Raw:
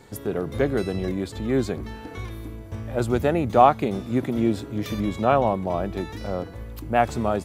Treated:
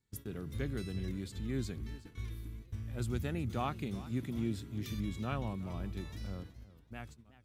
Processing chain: ending faded out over 1.15 s; gate -36 dBFS, range -21 dB; passive tone stack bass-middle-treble 6-0-2; warbling echo 0.37 s, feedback 36%, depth 154 cents, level -17.5 dB; gain +6 dB

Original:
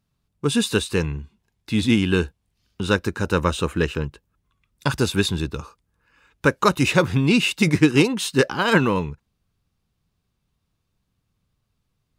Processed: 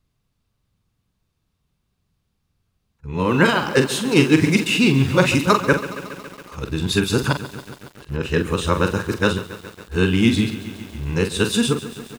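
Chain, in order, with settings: whole clip reversed; doubler 44 ms -8 dB; lo-fi delay 0.139 s, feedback 80%, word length 6-bit, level -14.5 dB; gain +1 dB

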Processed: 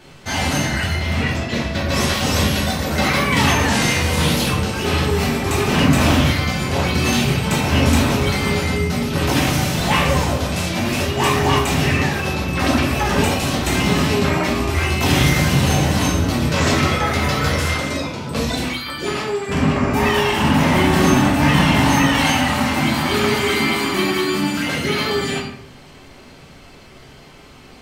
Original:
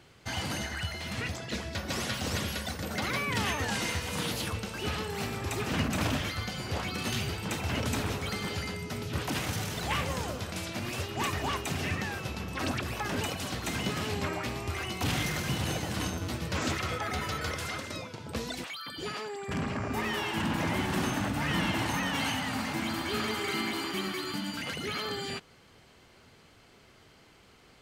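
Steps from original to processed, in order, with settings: 0.94–1.95 bell 9300 Hz -7 dB 1.8 oct; shoebox room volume 110 m³, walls mixed, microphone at 1.5 m; gain +8 dB

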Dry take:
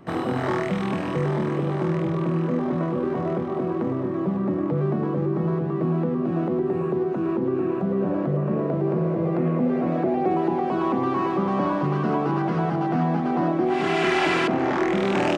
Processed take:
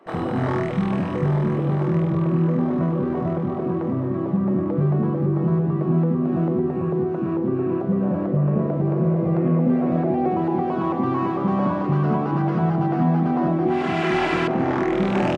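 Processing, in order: tilt -2 dB/oct; bands offset in time highs, lows 60 ms, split 350 Hz

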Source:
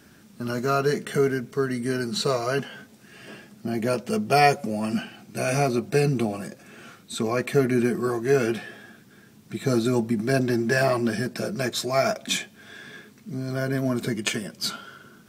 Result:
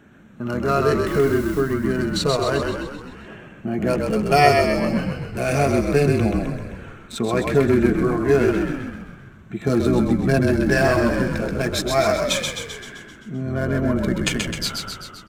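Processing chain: Wiener smoothing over 9 samples; 1.07–1.61 requantised 8-bit, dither triangular; frequency-shifting echo 0.13 s, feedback 59%, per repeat -41 Hz, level -4 dB; gain +3 dB

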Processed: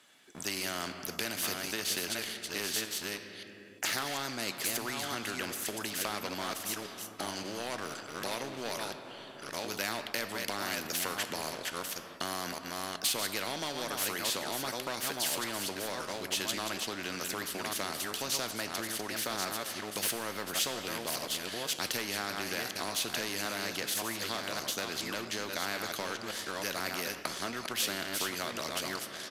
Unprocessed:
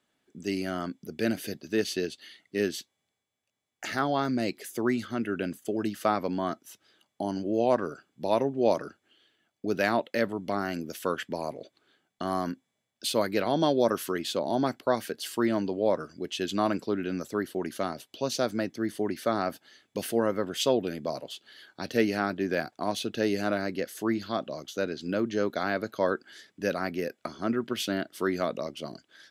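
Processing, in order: reverse delay 0.572 s, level -8 dB; HPF 63 Hz; sample leveller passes 1; compressor, threshold -26 dBFS, peak gain reduction 10 dB; tilt shelf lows -6 dB, about 780 Hz; on a send at -15.5 dB: reverb RT60 2.9 s, pre-delay 7 ms; on the sum: downsampling 32000 Hz; flange 0.47 Hz, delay 3 ms, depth 9.1 ms, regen +85%; spectral compressor 2:1; gain +2.5 dB

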